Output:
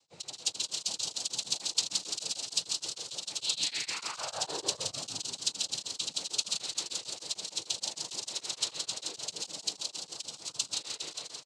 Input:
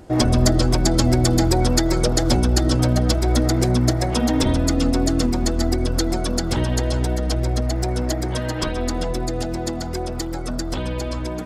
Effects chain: level rider; differentiator; early reflections 18 ms -11 dB, 79 ms -9.5 dB; frequency shift -140 Hz; painted sound fall, 3.40–4.71 s, 330–4800 Hz -31 dBFS; noise-vocoded speech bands 8; graphic EQ with 31 bands 250 Hz -11 dB, 1.6 kHz -9 dB, 4 kHz +10 dB; frequency-shifting echo 171 ms, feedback 50%, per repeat +130 Hz, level -4.5 dB; tremolo of two beating tones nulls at 6.6 Hz; trim -7.5 dB

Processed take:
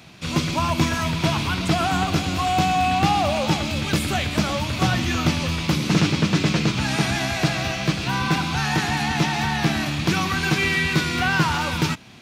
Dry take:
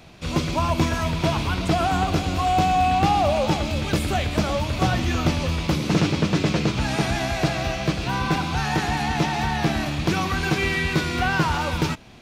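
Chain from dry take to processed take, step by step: high-pass 110 Hz 12 dB/octave; peaking EQ 530 Hz -7 dB 1.7 oct; trim +4 dB

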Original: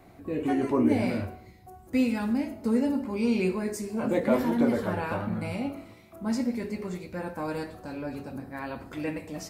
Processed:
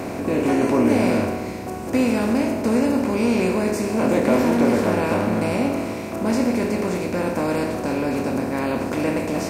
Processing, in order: spectral levelling over time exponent 0.4; trim +2 dB

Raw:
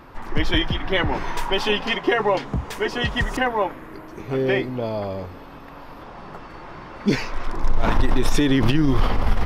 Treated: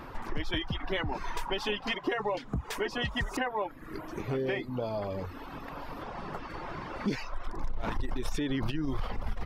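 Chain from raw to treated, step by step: reverb removal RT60 0.72 s; compression 3:1, threshold -33 dBFS, peak gain reduction 16 dB; trim +1 dB

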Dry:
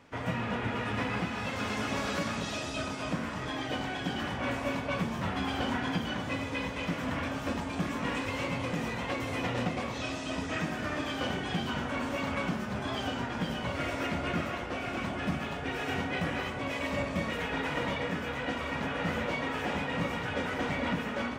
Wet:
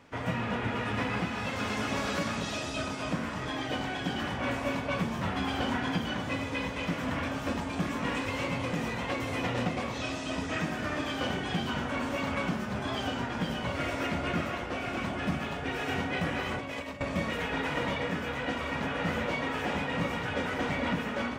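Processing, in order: 16.49–17.01 s: compressor with a negative ratio -37 dBFS, ratio -0.5; trim +1 dB

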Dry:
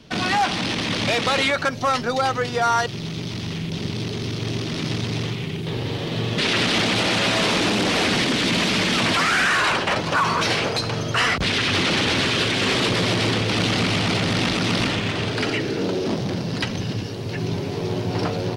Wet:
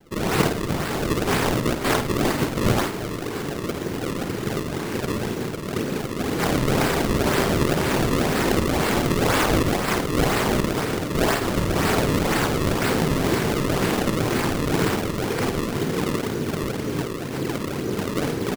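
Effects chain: doubling 35 ms -2 dB; noise-vocoded speech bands 2; elliptic band-stop 440–4500 Hz; echo whose repeats swap between lows and highs 169 ms, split 1.6 kHz, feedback 81%, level -12 dB; decimation with a swept rate 33×, swing 160% 2 Hz; on a send: flutter echo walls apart 8.9 m, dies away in 0.32 s

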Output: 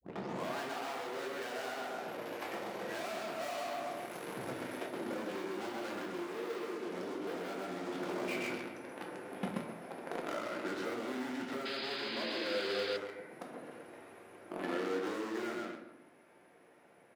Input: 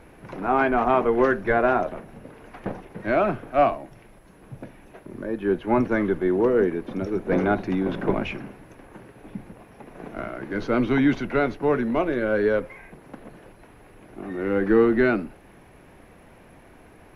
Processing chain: tape start-up on the opening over 0.60 s; Doppler pass-by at 3.73 s, 18 m/s, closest 22 m; on a send: feedback delay 130 ms, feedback 32%, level -5 dB; on the sum: waveshaping leveller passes 3; saturation -34.5 dBFS, distortion -3 dB; high-pass 330 Hz 12 dB/octave; compression 6:1, threshold -52 dBFS, peak gain reduction 17.5 dB; simulated room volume 160 m³, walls mixed, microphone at 0.82 m; gain riding within 10 dB 2 s; painted sound noise, 11.65–12.97 s, 1.4–5.1 kHz -53 dBFS; trim +11 dB

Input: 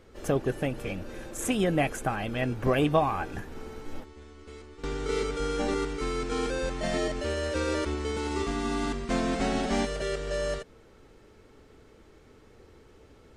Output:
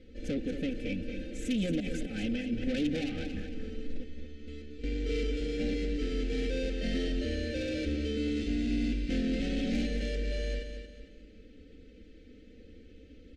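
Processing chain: low-pass 3.4 kHz 12 dB/octave; comb 3.9 ms, depth 100%; 1.80–2.67 s: compressor with a negative ratio -29 dBFS, ratio -0.5; saturation -25.5 dBFS, distortion -9 dB; Butterworth band-stop 1 kHz, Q 0.54; feedback delay 227 ms, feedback 37%, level -8 dB

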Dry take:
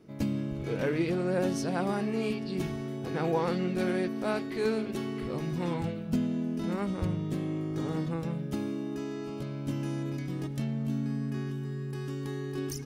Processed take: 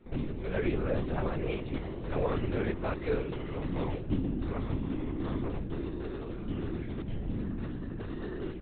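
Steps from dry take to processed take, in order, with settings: granular stretch 0.67×, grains 48 ms; LPC vocoder at 8 kHz whisper

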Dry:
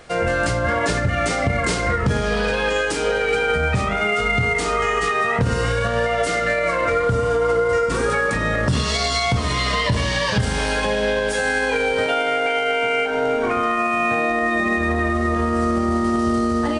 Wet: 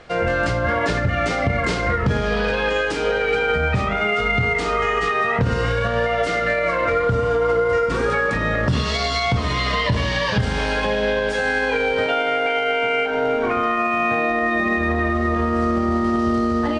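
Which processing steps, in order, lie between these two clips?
low-pass 4.6 kHz 12 dB/octave

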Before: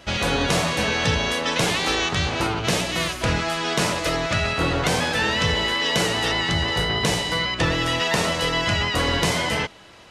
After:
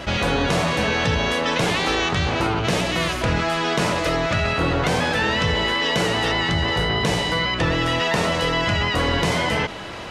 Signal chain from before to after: treble shelf 3.9 kHz -8.5 dB; level flattener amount 50%

